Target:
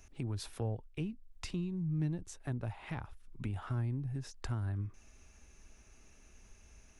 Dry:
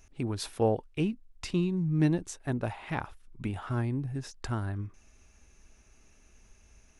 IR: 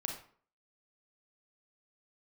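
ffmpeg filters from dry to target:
-filter_complex "[0:a]acrossover=split=130[link_01][link_02];[link_02]acompressor=threshold=-44dB:ratio=3[link_03];[link_01][link_03]amix=inputs=2:normalize=0"

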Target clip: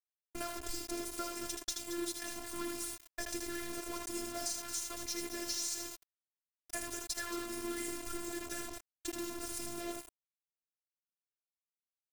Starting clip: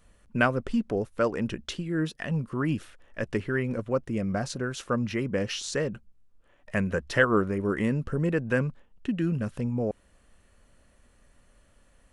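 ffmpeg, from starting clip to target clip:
ffmpeg -i in.wav -af "aecho=1:1:6.6:0.66,bandreject=frequency=109.6:width_type=h:width=4,bandreject=frequency=219.2:width_type=h:width=4,bandreject=frequency=328.8:width_type=h:width=4,bandreject=frequency=438.4:width_type=h:width=4,bandreject=frequency=548:width_type=h:width=4,bandreject=frequency=657.6:width_type=h:width=4,bandreject=frequency=767.2:width_type=h:width=4,bandreject=frequency=876.8:width_type=h:width=4,aexciter=amount=7.8:drive=9.5:freq=4300,agate=range=-33dB:threshold=-36dB:ratio=3:detection=peak,acompressor=threshold=-31dB:ratio=12,aeval=exprs='val(0)+0.00355*(sin(2*PI*60*n/s)+sin(2*PI*2*60*n/s)/2+sin(2*PI*3*60*n/s)/3+sin(2*PI*4*60*n/s)/4+sin(2*PI*5*60*n/s)/5)':channel_layout=same,aecho=1:1:78.72|224.5:0.501|0.251,acrusher=bits=5:mix=0:aa=0.000001,afftfilt=real='hypot(re,im)*cos(PI*b)':imag='0':win_size=512:overlap=0.75,volume=-2.5dB" out.wav

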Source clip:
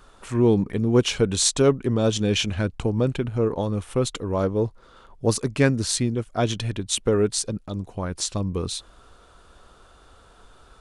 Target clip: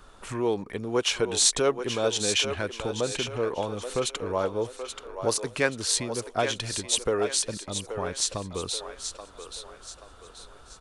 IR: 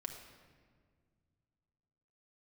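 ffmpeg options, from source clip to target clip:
-filter_complex "[0:a]acrossover=split=440[link_01][link_02];[link_01]acompressor=threshold=-35dB:ratio=10[link_03];[link_02]aecho=1:1:830|1660|2490|3320|4150:0.398|0.159|0.0637|0.0255|0.0102[link_04];[link_03][link_04]amix=inputs=2:normalize=0"

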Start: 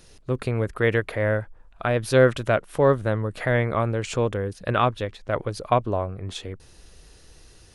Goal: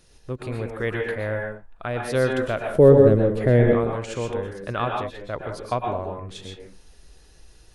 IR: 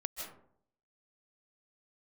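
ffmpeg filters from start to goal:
-filter_complex "[0:a]asettb=1/sr,asplit=3[link_01][link_02][link_03];[link_01]atrim=end=2.674[link_04];[link_02]atrim=start=2.67:end=3.75,asetpts=PTS-STARTPTS,afade=type=in:duration=0.004:curve=qsin,afade=type=out:start_time=1.076:duration=0.004:curve=qsin,lowshelf=frequency=640:width_type=q:width=1.5:gain=11[link_05];[link_03]atrim=start=3.746[link_06];[link_04][link_05]acrossfade=duration=0.004:curve1=hsin:curve2=qsin[link_07];[link_07][link_06]acrossfade=duration=0.004:curve1=qsin:curve2=hsin[link_08];[1:a]atrim=start_sample=2205,afade=type=out:start_time=0.34:duration=0.01,atrim=end_sample=15435,asetrate=57330,aresample=44100[link_09];[link_08][link_09]afir=irnorm=-1:irlink=0,volume=-1dB"

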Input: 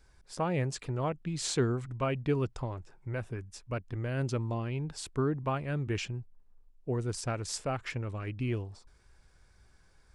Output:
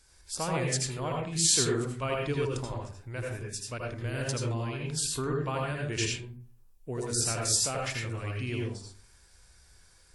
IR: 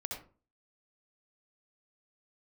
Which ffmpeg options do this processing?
-filter_complex "[0:a]crystalizer=i=5.5:c=0[link_01];[1:a]atrim=start_sample=2205,asetrate=34839,aresample=44100[link_02];[link_01][link_02]afir=irnorm=-1:irlink=0,volume=-2.5dB" -ar 48000 -c:a wmav2 -b:a 64k

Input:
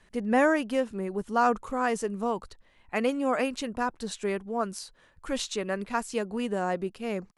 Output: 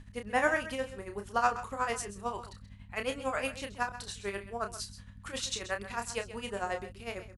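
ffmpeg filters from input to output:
ffmpeg -i in.wav -filter_complex "[0:a]highpass=frequency=1200:poles=1,aeval=exprs='val(0)+0.00398*(sin(2*PI*50*n/s)+sin(2*PI*2*50*n/s)/2+sin(2*PI*3*50*n/s)/3+sin(2*PI*4*50*n/s)/4+sin(2*PI*5*50*n/s)/5)':channel_layout=same,tremolo=f=11:d=0.83,asplit=2[link_01][link_02];[link_02]adelay=30,volume=-7dB[link_03];[link_01][link_03]amix=inputs=2:normalize=0,asplit=2[link_04][link_05];[link_05]aecho=0:1:131:0.211[link_06];[link_04][link_06]amix=inputs=2:normalize=0,volume=3dB" out.wav

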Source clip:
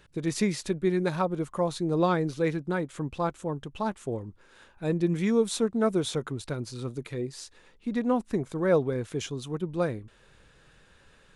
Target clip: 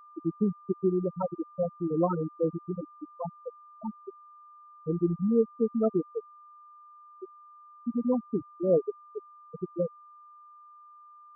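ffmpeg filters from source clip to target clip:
ffmpeg -i in.wav -af "afftfilt=real='re*gte(hypot(re,im),0.316)':imag='im*gte(hypot(re,im),0.316)':win_size=1024:overlap=0.75,aeval=exprs='val(0)+0.00316*sin(2*PI*1200*n/s)':channel_layout=same" out.wav

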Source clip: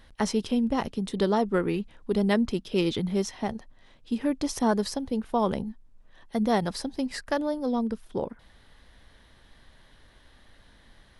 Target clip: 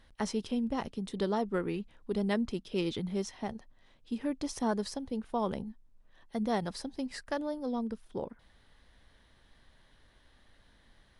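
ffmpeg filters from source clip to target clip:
ffmpeg -i in.wav -af "volume=-6.5dB" -ar 24000 -c:a libmp3lame -b:a 112k out.mp3

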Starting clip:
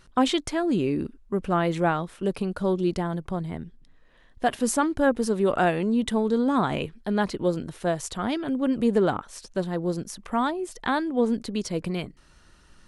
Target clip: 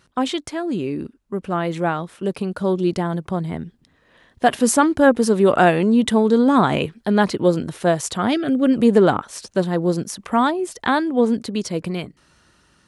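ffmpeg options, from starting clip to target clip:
ffmpeg -i in.wav -filter_complex "[0:a]highpass=85,dynaudnorm=framelen=800:gausssize=7:maxgain=11.5dB,asettb=1/sr,asplit=3[link_01][link_02][link_03];[link_01]atrim=end=8.334[link_04];[link_02]atrim=start=8.33:end=8.74,asetpts=PTS-STARTPTS,afade=type=in:duration=0.004:curve=qsin,afade=type=out:start_time=0.406:duration=0.004:curve=qsin,asuperstop=centerf=950:order=4:qfactor=2.7[link_05];[link_03]atrim=start=8.736[link_06];[link_04][link_05]acrossfade=duration=0.004:curve1=hsin:curve2=qsin[link_07];[link_07][link_06]acrossfade=duration=0.004:curve1=qsin:curve2=hsin" out.wav

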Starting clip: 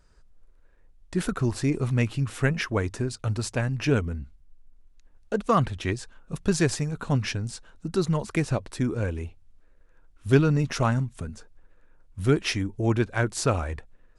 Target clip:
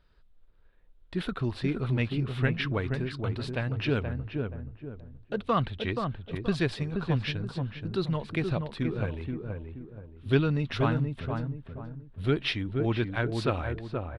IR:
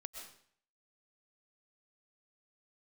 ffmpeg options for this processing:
-filter_complex "[0:a]highshelf=frequency=5000:width_type=q:width=3:gain=-11,asplit=2[link_01][link_02];[link_02]adelay=477,lowpass=frequency=1100:poles=1,volume=-4dB,asplit=2[link_03][link_04];[link_04]adelay=477,lowpass=frequency=1100:poles=1,volume=0.38,asplit=2[link_05][link_06];[link_06]adelay=477,lowpass=frequency=1100:poles=1,volume=0.38,asplit=2[link_07][link_08];[link_08]adelay=477,lowpass=frequency=1100:poles=1,volume=0.38,asplit=2[link_09][link_10];[link_10]adelay=477,lowpass=frequency=1100:poles=1,volume=0.38[link_11];[link_01][link_03][link_05][link_07][link_09][link_11]amix=inputs=6:normalize=0,volume=-5dB"

